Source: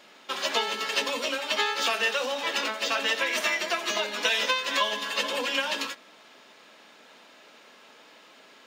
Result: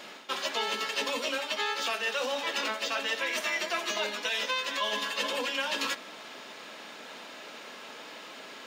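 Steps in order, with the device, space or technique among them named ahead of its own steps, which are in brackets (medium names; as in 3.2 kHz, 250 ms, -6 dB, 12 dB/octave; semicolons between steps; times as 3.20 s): compression on the reversed sound (reverse; compression 6:1, threshold -37 dBFS, peak gain reduction 16 dB; reverse); trim +8 dB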